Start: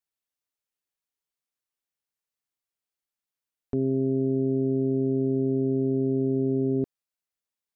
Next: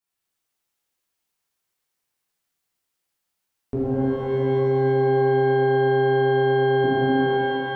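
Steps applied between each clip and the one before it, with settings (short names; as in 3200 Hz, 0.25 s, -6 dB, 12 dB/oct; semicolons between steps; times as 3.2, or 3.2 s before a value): shimmer reverb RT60 3.2 s, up +12 st, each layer -8 dB, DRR -11 dB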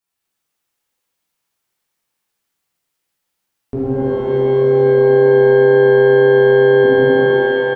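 frequency-shifting echo 0.271 s, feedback 35%, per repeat +100 Hz, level -11 dB; on a send at -4 dB: reverb RT60 1.3 s, pre-delay 44 ms; on the sum: gain +3.5 dB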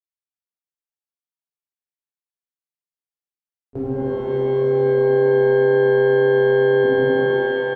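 gate with hold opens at -13 dBFS; gain -5.5 dB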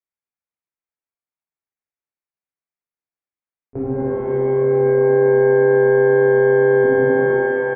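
elliptic low-pass 2400 Hz, stop band 50 dB; gain +2.5 dB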